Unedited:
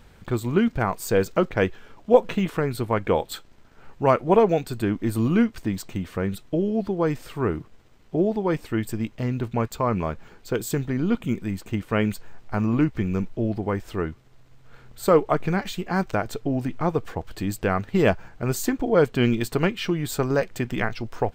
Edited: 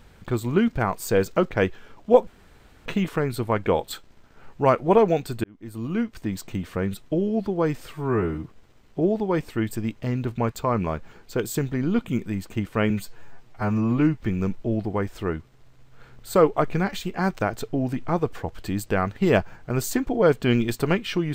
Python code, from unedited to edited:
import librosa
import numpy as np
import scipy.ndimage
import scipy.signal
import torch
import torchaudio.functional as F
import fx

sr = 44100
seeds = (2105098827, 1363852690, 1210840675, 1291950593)

y = fx.edit(x, sr, fx.insert_room_tone(at_s=2.27, length_s=0.59),
    fx.fade_in_span(start_s=4.85, length_s=1.06),
    fx.stretch_span(start_s=7.34, length_s=0.25, factor=2.0),
    fx.stretch_span(start_s=12.06, length_s=0.87, factor=1.5), tone=tone)